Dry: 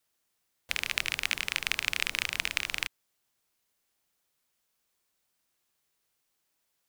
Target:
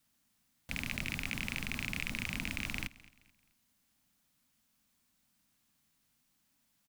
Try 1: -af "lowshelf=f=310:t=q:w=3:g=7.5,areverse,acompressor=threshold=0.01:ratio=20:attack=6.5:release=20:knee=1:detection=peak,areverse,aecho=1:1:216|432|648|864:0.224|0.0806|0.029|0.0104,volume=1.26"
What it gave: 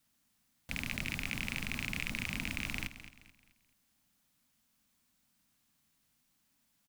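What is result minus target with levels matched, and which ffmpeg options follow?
echo-to-direct +7.5 dB
-af "lowshelf=f=310:t=q:w=3:g=7.5,areverse,acompressor=threshold=0.01:ratio=20:attack=6.5:release=20:knee=1:detection=peak,areverse,aecho=1:1:216|432|648:0.0944|0.034|0.0122,volume=1.26"

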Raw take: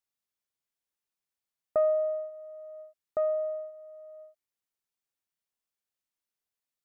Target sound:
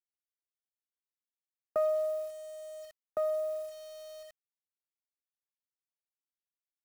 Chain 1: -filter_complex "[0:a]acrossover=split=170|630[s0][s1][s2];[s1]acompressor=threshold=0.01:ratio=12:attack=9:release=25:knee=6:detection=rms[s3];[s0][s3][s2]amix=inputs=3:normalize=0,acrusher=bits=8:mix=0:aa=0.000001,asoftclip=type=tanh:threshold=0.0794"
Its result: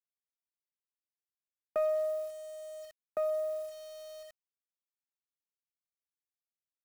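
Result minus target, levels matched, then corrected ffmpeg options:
saturation: distortion +17 dB
-filter_complex "[0:a]acrossover=split=170|630[s0][s1][s2];[s1]acompressor=threshold=0.01:ratio=12:attack=9:release=25:knee=6:detection=rms[s3];[s0][s3][s2]amix=inputs=3:normalize=0,acrusher=bits=8:mix=0:aa=0.000001,asoftclip=type=tanh:threshold=0.224"

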